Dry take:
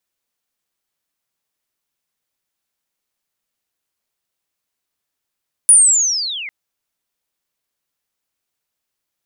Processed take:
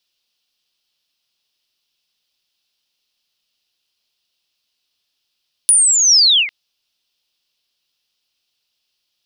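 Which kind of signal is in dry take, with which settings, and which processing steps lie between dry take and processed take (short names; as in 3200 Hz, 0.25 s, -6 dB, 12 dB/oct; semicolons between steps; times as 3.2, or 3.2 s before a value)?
chirp linear 9800 Hz -> 2000 Hz -3.5 dBFS -> -26 dBFS 0.80 s
band shelf 3800 Hz +14.5 dB 1.3 oct; compressor, threshold -9 dBFS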